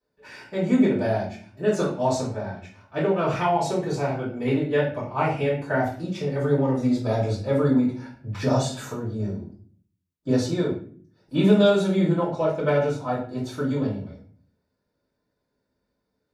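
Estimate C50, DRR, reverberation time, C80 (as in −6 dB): 5.5 dB, −10.0 dB, 0.45 s, 10.0 dB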